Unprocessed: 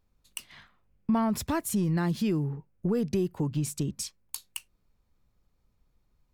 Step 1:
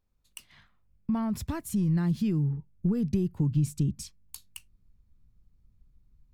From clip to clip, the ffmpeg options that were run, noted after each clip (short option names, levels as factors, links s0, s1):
-af "asubboost=boost=6.5:cutoff=230,volume=0.473"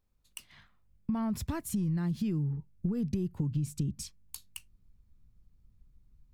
-af "acompressor=threshold=0.0398:ratio=6"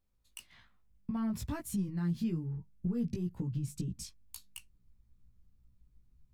-af "flanger=delay=15.5:depth=2.1:speed=1.1"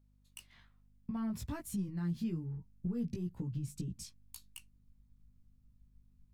-af "aeval=exprs='val(0)+0.000631*(sin(2*PI*50*n/s)+sin(2*PI*2*50*n/s)/2+sin(2*PI*3*50*n/s)/3+sin(2*PI*4*50*n/s)/4+sin(2*PI*5*50*n/s)/5)':c=same,volume=0.708"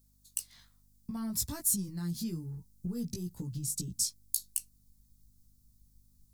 -af "aexciter=amount=5.7:drive=7.2:freq=4000"